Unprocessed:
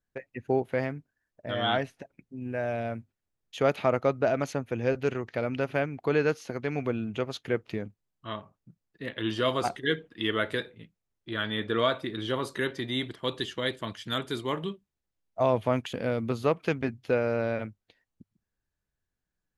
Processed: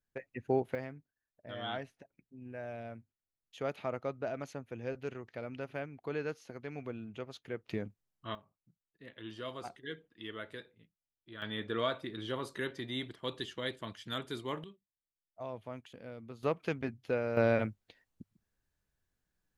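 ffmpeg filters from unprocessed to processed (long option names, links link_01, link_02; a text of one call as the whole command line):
ffmpeg -i in.wav -af "asetnsamples=nb_out_samples=441:pad=0,asendcmd='0.75 volume volume -12dB;7.69 volume volume -3.5dB;8.35 volume volume -15.5dB;11.42 volume volume -7.5dB;14.64 volume volume -18dB;16.43 volume volume -7dB;17.37 volume volume 2dB',volume=-4dB" out.wav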